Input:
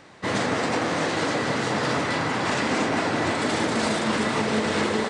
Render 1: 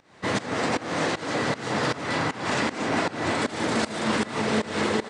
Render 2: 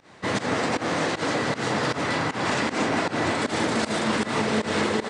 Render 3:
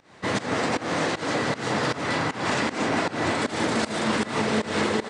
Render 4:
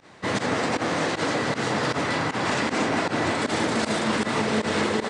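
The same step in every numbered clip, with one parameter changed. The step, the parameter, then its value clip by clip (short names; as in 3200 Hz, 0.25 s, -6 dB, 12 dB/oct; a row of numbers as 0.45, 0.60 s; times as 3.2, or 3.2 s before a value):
pump, release: 327, 128, 213, 75 ms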